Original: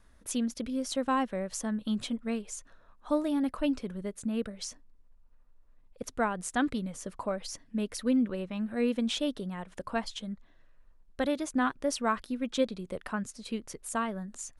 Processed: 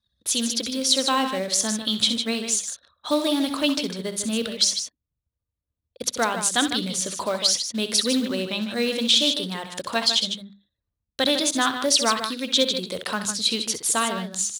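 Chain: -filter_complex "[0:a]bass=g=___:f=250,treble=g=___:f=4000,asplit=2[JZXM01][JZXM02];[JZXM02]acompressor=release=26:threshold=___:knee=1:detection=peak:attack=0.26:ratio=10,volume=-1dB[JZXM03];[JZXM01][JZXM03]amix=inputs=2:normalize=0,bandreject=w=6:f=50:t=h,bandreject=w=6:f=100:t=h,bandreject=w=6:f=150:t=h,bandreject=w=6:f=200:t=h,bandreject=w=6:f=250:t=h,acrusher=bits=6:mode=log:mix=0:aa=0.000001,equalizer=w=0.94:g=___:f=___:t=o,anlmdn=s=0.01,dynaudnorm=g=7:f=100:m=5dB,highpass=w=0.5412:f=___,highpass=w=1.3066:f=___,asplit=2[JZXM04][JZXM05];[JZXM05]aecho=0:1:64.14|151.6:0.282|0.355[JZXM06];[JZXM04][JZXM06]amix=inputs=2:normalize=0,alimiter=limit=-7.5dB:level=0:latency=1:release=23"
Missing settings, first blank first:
-5, 9, -40dB, 14, 3800, 74, 74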